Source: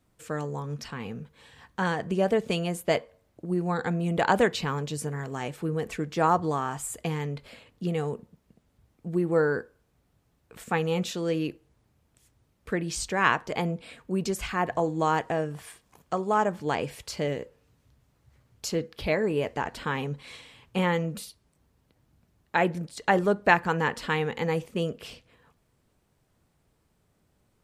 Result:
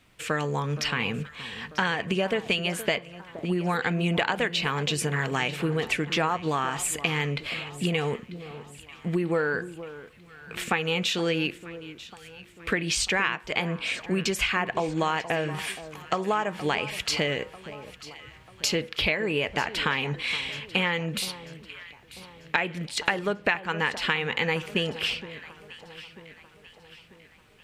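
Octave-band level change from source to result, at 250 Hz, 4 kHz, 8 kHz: -0.5, +10.0, +5.5 dB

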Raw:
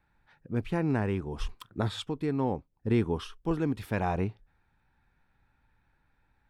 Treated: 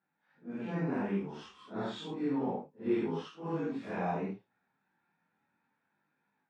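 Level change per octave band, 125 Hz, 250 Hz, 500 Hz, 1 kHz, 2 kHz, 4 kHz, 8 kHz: -9.5 dB, -3.5 dB, -3.5 dB, -3.5 dB, -5.5 dB, -7.0 dB, under -10 dB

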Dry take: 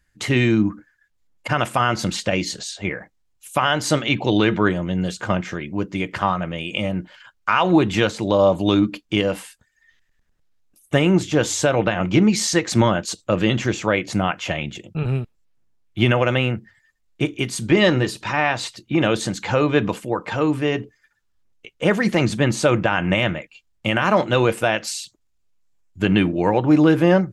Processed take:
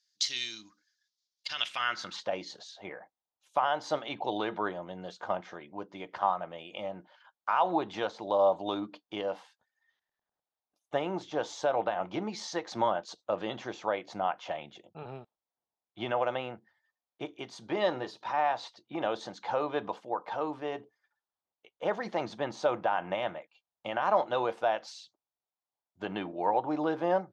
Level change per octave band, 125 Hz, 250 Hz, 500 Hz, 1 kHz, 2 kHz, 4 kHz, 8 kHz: -26.0, -19.5, -10.5, -6.5, -15.5, -12.0, -17.5 dB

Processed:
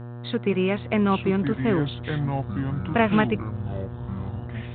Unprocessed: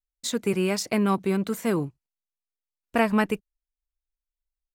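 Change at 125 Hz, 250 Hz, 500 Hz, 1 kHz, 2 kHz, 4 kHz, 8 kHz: +8.5 dB, +2.5 dB, +2.0 dB, +2.0 dB, +2.5 dB, -0.5 dB, under -40 dB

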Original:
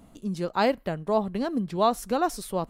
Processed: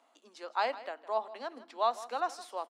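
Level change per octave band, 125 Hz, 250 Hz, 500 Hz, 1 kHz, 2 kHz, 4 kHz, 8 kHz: under -40 dB, -24.5 dB, -9.5 dB, -5.0 dB, -5.5 dB, -6.5 dB, -12.0 dB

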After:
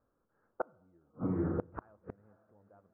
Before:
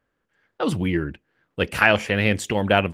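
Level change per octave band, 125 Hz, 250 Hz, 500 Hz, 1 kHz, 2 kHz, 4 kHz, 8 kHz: -15.0 dB, -13.5 dB, -18.5 dB, -21.0 dB, -35.0 dB, under -40 dB, under -40 dB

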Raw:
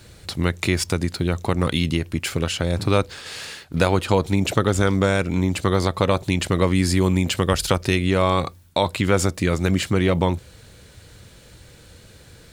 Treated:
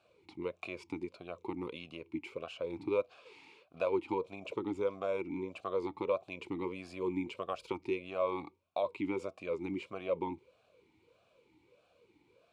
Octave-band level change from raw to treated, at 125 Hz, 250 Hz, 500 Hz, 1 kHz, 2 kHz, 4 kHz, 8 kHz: -30.5 dB, -17.5 dB, -12.5 dB, -16.0 dB, -19.5 dB, -25.0 dB, under -35 dB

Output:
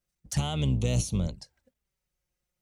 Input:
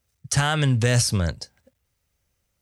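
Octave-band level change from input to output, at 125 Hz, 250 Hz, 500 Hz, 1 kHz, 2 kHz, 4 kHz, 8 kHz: -6.5, -4.5, -8.5, -11.5, -18.0, -10.0, -10.5 dB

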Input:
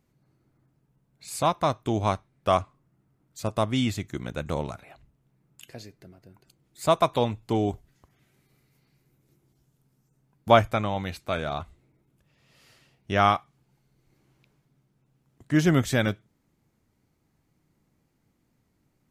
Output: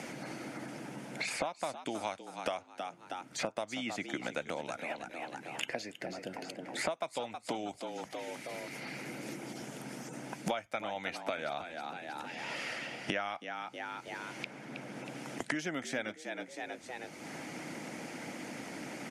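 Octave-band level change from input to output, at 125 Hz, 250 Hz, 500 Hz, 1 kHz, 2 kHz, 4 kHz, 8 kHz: -19.0, -11.0, -10.5, -11.5, -3.0, -5.5, -3.0 dB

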